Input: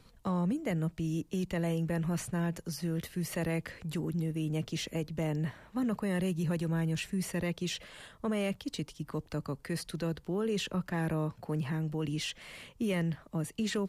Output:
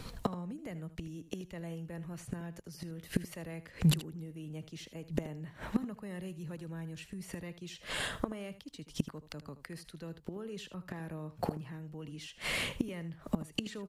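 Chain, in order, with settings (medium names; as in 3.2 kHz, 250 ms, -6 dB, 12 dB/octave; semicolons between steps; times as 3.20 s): inverted gate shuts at -31 dBFS, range -25 dB; delay 78 ms -14.5 dB; trim +14 dB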